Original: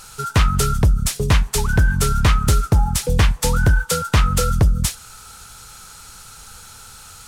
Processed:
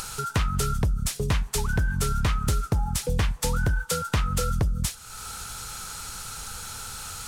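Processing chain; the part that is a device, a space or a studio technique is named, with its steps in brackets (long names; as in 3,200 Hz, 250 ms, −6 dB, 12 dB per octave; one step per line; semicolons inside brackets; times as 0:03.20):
upward and downward compression (upward compression, threshold −20 dBFS; downward compressor, threshold −14 dBFS, peak gain reduction 4.5 dB)
level −6 dB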